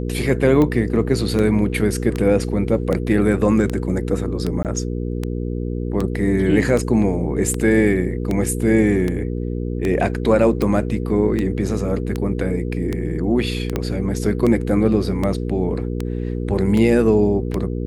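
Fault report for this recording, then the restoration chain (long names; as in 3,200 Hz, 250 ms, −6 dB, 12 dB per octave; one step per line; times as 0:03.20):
mains hum 60 Hz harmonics 8 −24 dBFS
scratch tick 78 rpm −10 dBFS
0:04.63–0:04.65: drop-out 18 ms
0:13.76: click −8 dBFS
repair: click removal
hum removal 60 Hz, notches 8
repair the gap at 0:04.63, 18 ms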